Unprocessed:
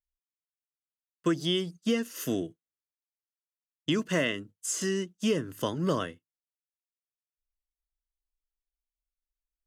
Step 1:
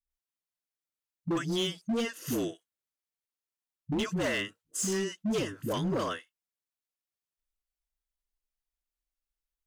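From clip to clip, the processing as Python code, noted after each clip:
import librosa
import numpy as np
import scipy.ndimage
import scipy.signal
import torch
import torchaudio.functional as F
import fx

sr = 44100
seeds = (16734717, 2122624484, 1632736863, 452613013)

y = fx.dispersion(x, sr, late='highs', ms=108.0, hz=450.0)
y = np.clip(y, -10.0 ** (-26.0 / 20.0), 10.0 ** (-26.0 / 20.0))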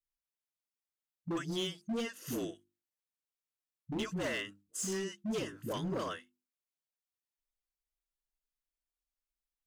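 y = fx.hum_notches(x, sr, base_hz=50, count=7)
y = y * librosa.db_to_amplitude(-5.5)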